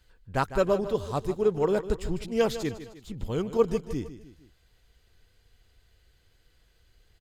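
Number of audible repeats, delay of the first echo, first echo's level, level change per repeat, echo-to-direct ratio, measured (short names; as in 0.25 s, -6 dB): 3, 0.153 s, -13.0 dB, -6.5 dB, -12.0 dB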